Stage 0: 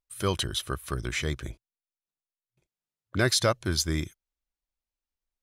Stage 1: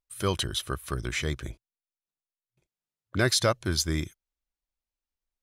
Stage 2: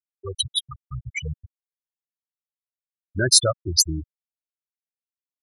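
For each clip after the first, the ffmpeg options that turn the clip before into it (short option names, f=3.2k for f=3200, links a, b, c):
-af anull
-af "dynaudnorm=f=200:g=3:m=10dB,aemphasis=mode=production:type=75fm,afftfilt=real='re*gte(hypot(re,im),0.631)':imag='im*gte(hypot(re,im),0.631)':win_size=1024:overlap=0.75,volume=-5.5dB"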